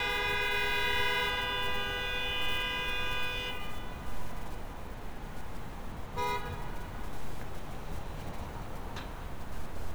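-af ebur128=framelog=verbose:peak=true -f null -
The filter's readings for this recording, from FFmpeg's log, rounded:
Integrated loudness:
  I:         -34.8 LUFS
  Threshold: -44.9 LUFS
Loudness range:
  LRA:        10.6 LU
  Threshold: -56.0 LUFS
  LRA low:   -41.5 LUFS
  LRA high:  -30.9 LUFS
True peak:
  Peak:      -16.9 dBFS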